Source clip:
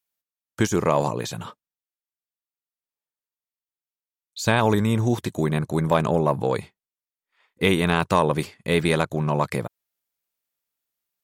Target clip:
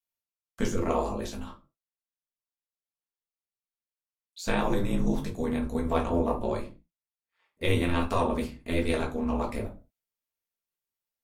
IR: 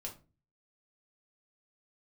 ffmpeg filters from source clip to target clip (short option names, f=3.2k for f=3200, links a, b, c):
-filter_complex "[0:a]aeval=exprs='val(0)*sin(2*PI*90*n/s)':c=same[a];[1:a]atrim=start_sample=2205,afade=t=out:st=0.28:d=0.01,atrim=end_sample=12789[b];[a][b]afir=irnorm=-1:irlink=0,volume=-2.5dB" -ar 44100 -c:a aac -b:a 96k